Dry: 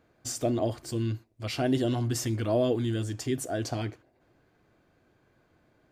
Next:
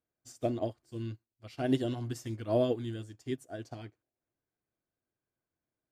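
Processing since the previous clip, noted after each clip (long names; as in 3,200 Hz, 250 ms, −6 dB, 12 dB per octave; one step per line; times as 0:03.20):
expander for the loud parts 2.5 to 1, over −40 dBFS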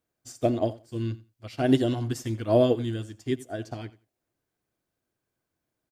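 repeating echo 88 ms, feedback 17%, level −19 dB
level +7.5 dB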